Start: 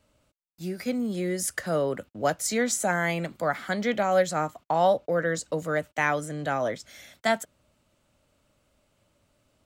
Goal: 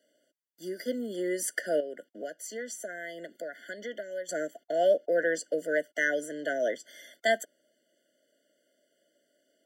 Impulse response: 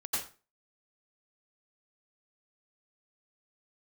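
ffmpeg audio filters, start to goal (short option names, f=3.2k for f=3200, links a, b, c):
-filter_complex "[0:a]highpass=f=290:w=0.5412,highpass=f=290:w=1.3066,asettb=1/sr,asplit=3[a][b][c];[a]atrim=end=1.804[d];[b]atrim=start=1.8:end=4.29,asetpts=PTS-STARTPTS,afade=t=in:d=0.004:c=qsin,afade=t=out:st=2.486:d=0.004:c=qsin,acompressor=threshold=-38dB:ratio=3[e];[c]atrim=start=4.286[f];[d][e]acrossfade=d=0.004:c1=hsin:c2=qsin[g];[g][f]acrossfade=d=0.004:c1=qsin:c2=hsin,afftfilt=real='re*eq(mod(floor(b*sr/1024/710),2),0)':imag='im*eq(mod(floor(b*sr/1024/710),2),0)':win_size=1024:overlap=0.75"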